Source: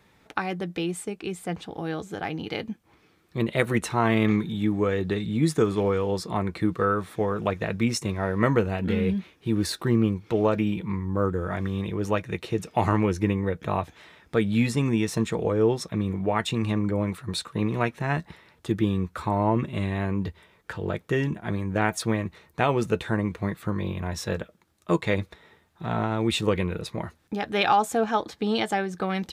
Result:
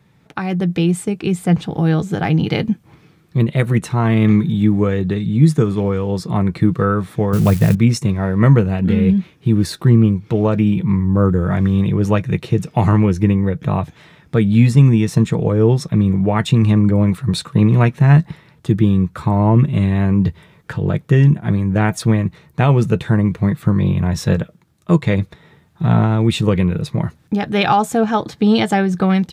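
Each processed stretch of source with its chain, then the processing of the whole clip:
7.33–7.75 s: zero-crossing glitches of -22.5 dBFS + bass shelf 220 Hz +9.5 dB
whole clip: peaking EQ 140 Hz +14.5 dB 1.2 oct; level rider; trim -1 dB

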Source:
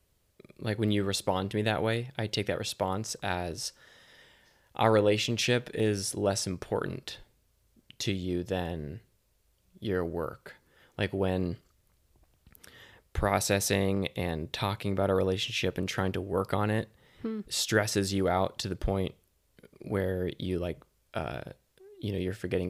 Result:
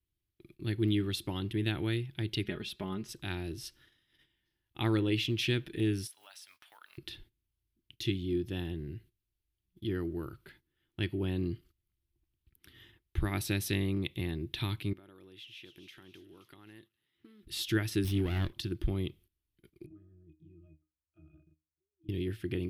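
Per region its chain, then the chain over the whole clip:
2.44–3.09 s: treble shelf 5.3 kHz -9.5 dB + comb 4.8 ms, depth 69%
6.07–6.98 s: block-companded coder 7-bit + inverse Chebyshev high-pass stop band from 370 Hz + compression 2:1, threshold -46 dBFS
14.93–17.43 s: high-pass 470 Hz 6 dB/octave + compression 2:1, threshold -56 dBFS + feedback echo behind a high-pass 266 ms, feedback 47%, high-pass 3.7 kHz, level -6.5 dB
18.04–18.53 s: comb filter that takes the minimum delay 0.35 ms + peaking EQ 66 Hz +7 dB 1.3 oct
19.86–22.09 s: pitch-class resonator D#, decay 0.24 s + compression, threshold -51 dBFS
whole clip: gate -54 dBFS, range -14 dB; FFT filter 120 Hz 0 dB, 230 Hz -6 dB, 340 Hz +4 dB, 490 Hz -20 dB, 3.2 kHz -1 dB, 7.3 kHz -15 dB, 11 kHz -3 dB

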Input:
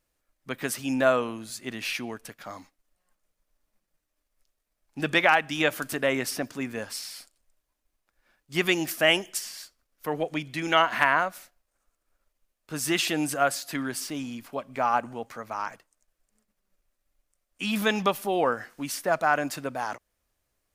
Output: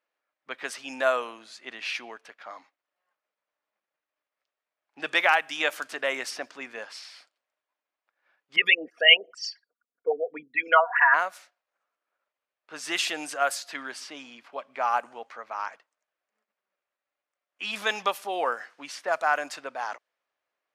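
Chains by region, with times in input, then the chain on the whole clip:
8.56–11.14 s: resonances exaggerated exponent 3 + comb 4.2 ms, depth 82% + LFO low-pass sine 2.5 Hz 460–5300 Hz
whole clip: level-controlled noise filter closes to 2.7 kHz, open at -19 dBFS; high-pass 600 Hz 12 dB/octave

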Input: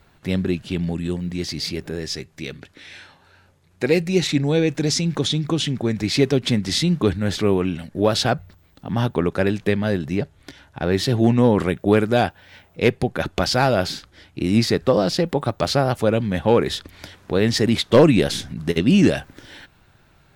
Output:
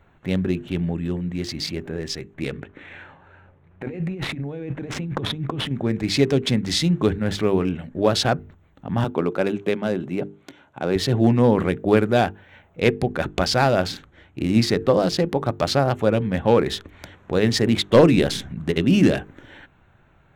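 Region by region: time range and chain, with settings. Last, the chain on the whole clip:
2.34–5.71 s: median filter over 9 samples + compressor with a negative ratio -27 dBFS + distance through air 82 m
9.04–10.96 s: high-pass 180 Hz + peaking EQ 1.8 kHz -8.5 dB 0.22 oct
whole clip: local Wiener filter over 9 samples; hum notches 50/100/150/200/250/300/350/400/450 Hz

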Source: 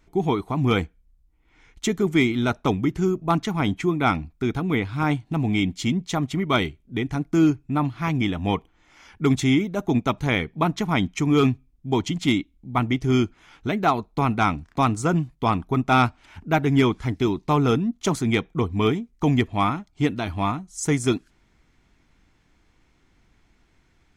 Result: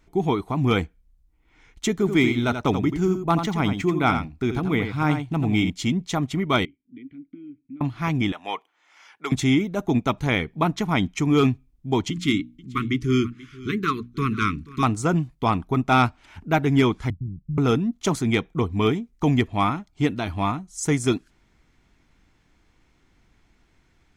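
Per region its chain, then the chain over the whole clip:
1.95–5.70 s: median filter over 3 samples + delay 85 ms -8 dB
6.65–7.81 s: distance through air 390 m + compression 10:1, threshold -28 dBFS + vowel filter i
8.32–9.32 s: high-pass 720 Hz + treble shelf 5.8 kHz -4 dB
12.10–14.83 s: Chebyshev band-stop 430–1100 Hz, order 4 + hum notches 60/120/180/240/300 Hz + delay 484 ms -19.5 dB
17.10–17.58 s: inverse Chebyshev low-pass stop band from 720 Hz, stop band 70 dB + tape noise reduction on one side only decoder only
whole clip: none

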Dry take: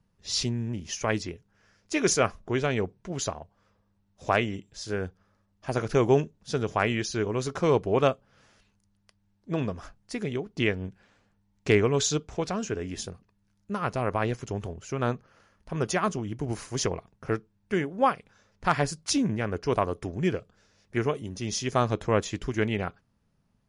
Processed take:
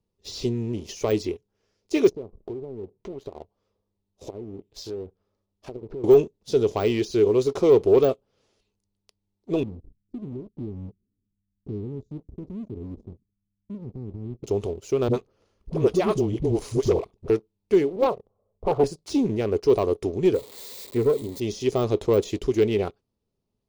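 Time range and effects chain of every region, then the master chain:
2.09–6.04 s: low-pass that closes with the level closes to 330 Hz, closed at -24 dBFS + compression 10:1, threshold -37 dBFS
9.63–14.44 s: inverse Chebyshev low-pass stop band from 670 Hz, stop band 50 dB + compression 2.5:1, threshold -34 dBFS
15.08–17.30 s: bass shelf 210 Hz +8 dB + phase dispersion highs, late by 57 ms, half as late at 350 Hz
17.96–18.84 s: Chebyshev low-pass 1.1 kHz, order 5 + comb 1.6 ms, depth 52% + loudspeaker Doppler distortion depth 0.9 ms
20.34–21.40 s: zero-crossing glitches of -22 dBFS + rippled EQ curve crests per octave 1, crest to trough 7 dB
whole clip: waveshaping leveller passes 2; fifteen-band graphic EQ 160 Hz -5 dB, 400 Hz +11 dB, 1.6 kHz -11 dB, 4 kHz +4 dB; de-esser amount 65%; trim -5 dB

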